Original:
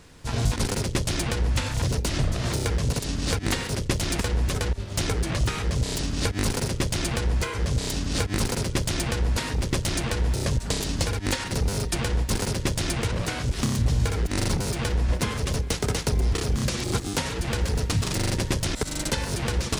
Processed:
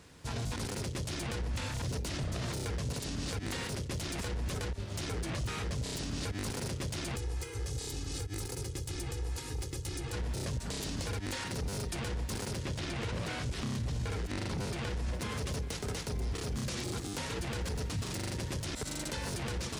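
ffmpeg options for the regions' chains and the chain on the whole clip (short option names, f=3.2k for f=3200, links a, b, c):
-filter_complex "[0:a]asettb=1/sr,asplit=3[a][b][c];[a]atrim=end=7.154[d];[b]atrim=start=7.15:end=10.13,asetpts=PTS-STARTPTS,afade=t=in:d=0.004:c=qsin,afade=t=out:st=2.976:d=0.004:c=qsin,acrossover=split=330|5500[e][f][g];[e]acompressor=threshold=-31dB:ratio=4[h];[f]acompressor=threshold=-44dB:ratio=4[i];[g]acompressor=threshold=-39dB:ratio=4[j];[h][i][j]amix=inputs=3:normalize=0,aecho=1:1:2.4:0.78,atrim=end_sample=131418[k];[c]atrim=start=10.126[l];[d][k]acrossfade=d=0.004:c1=hsin:c2=qsin[m];[m][l]acrossfade=d=0.004:c1=qsin:c2=hsin,asettb=1/sr,asplit=3[n][o][p];[n]atrim=end=12.584[q];[o]atrim=start=12.58:end=15.13,asetpts=PTS-STARTPTS,afade=t=in:d=0.004:c=qsin,afade=t=out:st=2.546:d=0.004:c=qsin,equalizer=f=8.1k:w=0.55:g=6,acrossover=split=4000[r][s];[s]acompressor=threshold=-42dB:ratio=4:attack=1:release=60[t];[r][t]amix=inputs=2:normalize=0[u];[p]atrim=start=15.126[v];[q][u]acrossfade=d=0.004:c1=hsin:c2=qsin[w];[w][v]acrossfade=d=0.004:c1=qsin:c2=hsin,highpass=56,alimiter=limit=-23dB:level=0:latency=1:release=20,volume=-5dB"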